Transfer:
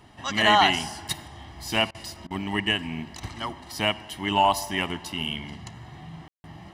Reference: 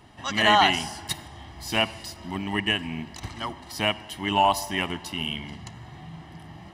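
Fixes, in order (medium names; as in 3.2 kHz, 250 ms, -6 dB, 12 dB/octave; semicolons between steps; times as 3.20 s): room tone fill 6.28–6.44 s; interpolate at 1.91/2.27 s, 35 ms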